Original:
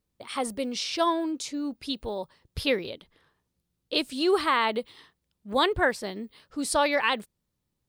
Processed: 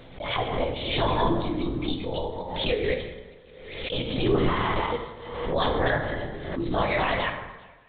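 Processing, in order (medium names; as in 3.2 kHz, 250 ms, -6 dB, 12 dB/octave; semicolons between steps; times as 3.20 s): chunks repeated in reverse 128 ms, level -1 dB; peak limiter -16.5 dBFS, peak gain reduction 8.5 dB; steep high-pass 250 Hz; comb of notches 1.4 kHz; on a send: feedback echo behind a high-pass 395 ms, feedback 40%, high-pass 1.7 kHz, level -23.5 dB; on the sum: LPC vocoder at 8 kHz whisper; plate-style reverb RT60 1.2 s, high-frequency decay 0.5×, DRR 2.5 dB; swell ahead of each attack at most 50 dB/s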